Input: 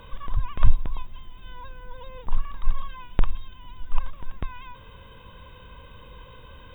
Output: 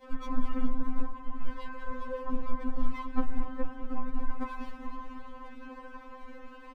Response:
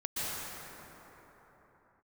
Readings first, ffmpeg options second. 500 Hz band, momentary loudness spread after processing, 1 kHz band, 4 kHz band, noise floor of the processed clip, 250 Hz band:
+4.0 dB, 12 LU, +0.5 dB, n/a, -48 dBFS, +10.0 dB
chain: -filter_complex "[0:a]lowpass=f=1.9k:w=0.5412,lowpass=f=1.9k:w=1.3066,equalizer=f=110:w=1.7:g=7.5,aeval=exprs='sgn(val(0))*max(abs(val(0))-0.00562,0)':c=same,asplit=2[a][b];[b]aecho=0:1:194:0.266[c];[a][c]amix=inputs=2:normalize=0,adynamicequalizer=threshold=0.00178:dfrequency=1400:dqfactor=0.9:tfrequency=1400:tqfactor=0.9:attack=5:release=100:ratio=0.375:range=1.5:mode=cutabove:tftype=bell,acompressor=threshold=-19dB:ratio=6,aecho=1:1:418:0.282,asplit=2[d][e];[1:a]atrim=start_sample=2205[f];[e][f]afir=irnorm=-1:irlink=0,volume=-15dB[g];[d][g]amix=inputs=2:normalize=0,afftfilt=real='hypot(re,im)*cos(2*PI*random(0))':imag='hypot(re,im)*sin(2*PI*random(1))':win_size=512:overlap=0.75,bandreject=f=50:t=h:w=6,bandreject=f=100:t=h:w=6,bandreject=f=150:t=h:w=6,asoftclip=type=tanh:threshold=-22.5dB,afftfilt=real='re*3.46*eq(mod(b,12),0)':imag='im*3.46*eq(mod(b,12),0)':win_size=2048:overlap=0.75,volume=12dB"

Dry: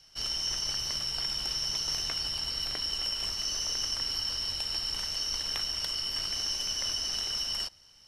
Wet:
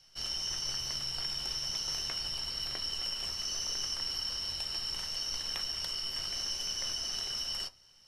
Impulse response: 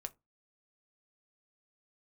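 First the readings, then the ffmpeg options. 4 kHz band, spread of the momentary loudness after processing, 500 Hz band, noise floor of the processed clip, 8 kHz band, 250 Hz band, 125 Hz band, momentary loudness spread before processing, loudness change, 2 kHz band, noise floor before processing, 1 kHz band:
-3.5 dB, 1 LU, -3.0 dB, -61 dBFS, -3.0 dB, -3.5 dB, -3.0 dB, 1 LU, -3.5 dB, -3.5 dB, -58 dBFS, -3.0 dB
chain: -filter_complex "[1:a]atrim=start_sample=2205[a];[0:a][a]afir=irnorm=-1:irlink=0"

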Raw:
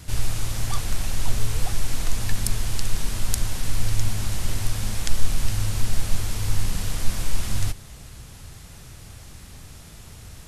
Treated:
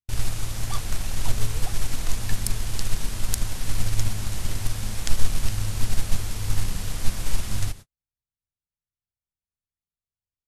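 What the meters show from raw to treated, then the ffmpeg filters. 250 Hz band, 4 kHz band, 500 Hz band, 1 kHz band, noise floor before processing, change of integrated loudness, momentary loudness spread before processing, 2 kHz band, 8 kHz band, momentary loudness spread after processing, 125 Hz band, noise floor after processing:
-1.5 dB, -1.5 dB, -1.5 dB, -1.5 dB, -44 dBFS, -1.5 dB, 16 LU, -1.5 dB, -1.5 dB, 3 LU, -1.5 dB, under -85 dBFS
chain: -af "aeval=exprs='0.891*(cos(1*acos(clip(val(0)/0.891,-1,1)))-cos(1*PI/2))+0.01*(cos(3*acos(clip(val(0)/0.891,-1,1)))-cos(3*PI/2))+0.0355*(cos(7*acos(clip(val(0)/0.891,-1,1)))-cos(7*PI/2))':c=same,agate=range=-54dB:threshold=-34dB:ratio=16:detection=peak"

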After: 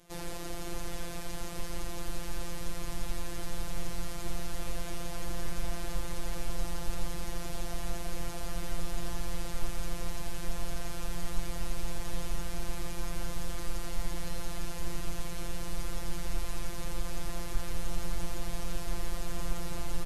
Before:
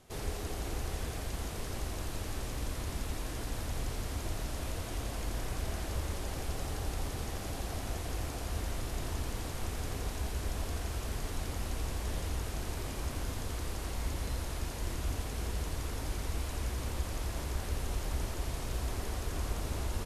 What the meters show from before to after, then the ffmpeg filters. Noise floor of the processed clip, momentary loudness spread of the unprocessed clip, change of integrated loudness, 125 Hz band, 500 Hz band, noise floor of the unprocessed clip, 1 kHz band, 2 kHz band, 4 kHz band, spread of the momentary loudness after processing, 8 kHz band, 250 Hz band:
-35 dBFS, 2 LU, -1.5 dB, -4.5 dB, -1.0 dB, -39 dBFS, -0.5 dB, 0.0 dB, 0.0 dB, 1 LU, 0.0 dB, +1.0 dB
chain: -af "asubboost=boost=3.5:cutoff=90,acontrast=71,afftfilt=real='hypot(re,im)*cos(PI*b)':imag='0':win_size=1024:overlap=0.75,volume=-3dB"

